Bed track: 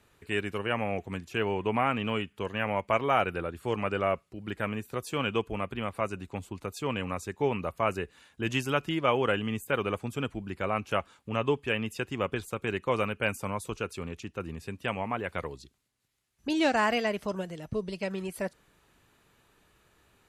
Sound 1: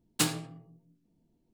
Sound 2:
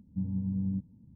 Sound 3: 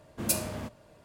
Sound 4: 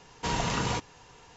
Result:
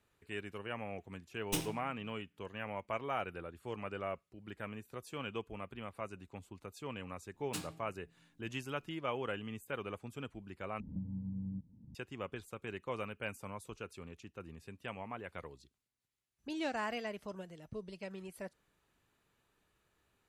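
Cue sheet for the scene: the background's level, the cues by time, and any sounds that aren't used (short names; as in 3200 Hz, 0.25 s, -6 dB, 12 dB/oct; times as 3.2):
bed track -12 dB
1.33 add 1 -7.5 dB + minimum comb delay 0.35 ms
7.34 add 1 -15 dB + upward compressor, threshold -44 dBFS
10.8 replace with 2 -9.5 dB + three-band squash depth 100%
not used: 3, 4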